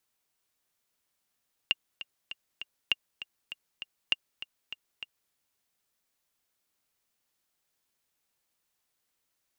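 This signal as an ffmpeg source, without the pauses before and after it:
ffmpeg -f lavfi -i "aevalsrc='pow(10,(-10.5-14.5*gte(mod(t,4*60/199),60/199))/20)*sin(2*PI*2810*mod(t,60/199))*exp(-6.91*mod(t,60/199)/0.03)':duration=3.61:sample_rate=44100" out.wav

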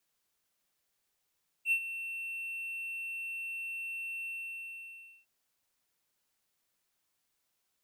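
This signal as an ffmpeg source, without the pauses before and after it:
ffmpeg -f lavfi -i "aevalsrc='0.0841*(1-4*abs(mod(2700*t+0.25,1)-0.5))':duration=3.607:sample_rate=44100,afade=type=in:duration=0.067,afade=type=out:start_time=0.067:duration=0.074:silence=0.224,afade=type=out:start_time=2.61:duration=0.997" out.wav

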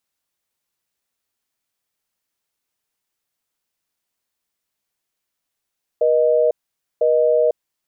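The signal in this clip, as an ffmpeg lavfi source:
ffmpeg -f lavfi -i "aevalsrc='0.168*(sin(2*PI*480*t)+sin(2*PI*620*t))*clip(min(mod(t,1),0.5-mod(t,1))/0.005,0,1)':duration=1.6:sample_rate=44100" out.wav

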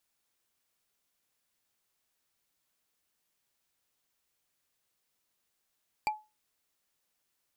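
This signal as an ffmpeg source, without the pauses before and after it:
ffmpeg -f lavfi -i "aevalsrc='0.0668*pow(10,-3*t/0.26)*sin(2*PI*855*t)+0.0398*pow(10,-3*t/0.077)*sin(2*PI*2357.2*t)+0.0237*pow(10,-3*t/0.034)*sin(2*PI*4620.4*t)+0.0141*pow(10,-3*t/0.019)*sin(2*PI*7637.7*t)+0.00841*pow(10,-3*t/0.012)*sin(2*PI*11405.7*t)':duration=0.45:sample_rate=44100" out.wav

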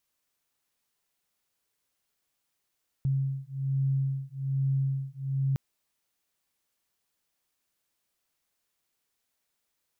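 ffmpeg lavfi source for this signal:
ffmpeg -f lavfi -i "aevalsrc='0.0355*(sin(2*PI*135*t)+sin(2*PI*136.2*t))':duration=2.51:sample_rate=44100" out.wav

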